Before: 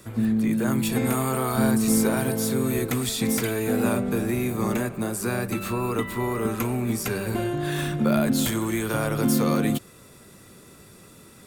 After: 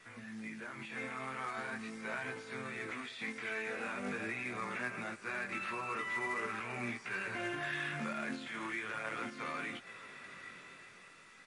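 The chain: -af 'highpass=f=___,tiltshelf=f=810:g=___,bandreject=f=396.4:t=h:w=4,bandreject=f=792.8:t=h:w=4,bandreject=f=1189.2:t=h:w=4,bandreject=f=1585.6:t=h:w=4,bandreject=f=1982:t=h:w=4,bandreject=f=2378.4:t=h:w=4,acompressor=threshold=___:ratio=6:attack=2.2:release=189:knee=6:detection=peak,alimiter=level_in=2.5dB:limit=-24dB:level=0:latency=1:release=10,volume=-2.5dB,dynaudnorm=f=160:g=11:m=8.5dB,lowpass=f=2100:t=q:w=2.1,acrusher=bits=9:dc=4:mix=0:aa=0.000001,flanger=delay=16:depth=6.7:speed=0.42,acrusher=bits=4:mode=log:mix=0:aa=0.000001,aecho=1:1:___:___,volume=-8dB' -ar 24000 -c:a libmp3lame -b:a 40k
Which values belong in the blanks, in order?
130, -9, -33dB, 822, 0.0708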